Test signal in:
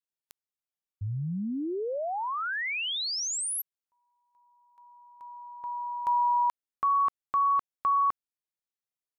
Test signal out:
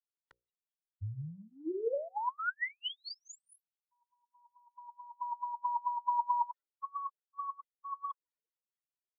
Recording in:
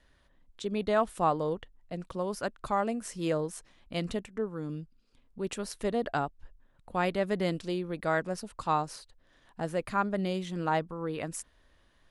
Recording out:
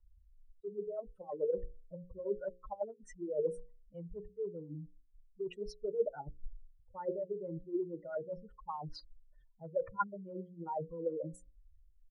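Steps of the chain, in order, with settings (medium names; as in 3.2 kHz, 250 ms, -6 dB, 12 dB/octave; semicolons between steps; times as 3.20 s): spectral contrast enhancement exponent 3.7; reverse; compression 5:1, threshold -43 dBFS; reverse; peaking EQ 2.5 kHz -14 dB 0.29 oct; comb 2.1 ms, depth 98%; LFO low-pass sine 4.6 Hz 310–3300 Hz; hum notches 60/120/180/240/300/360/420/480/540 Hz; three bands expanded up and down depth 40%; trim +1 dB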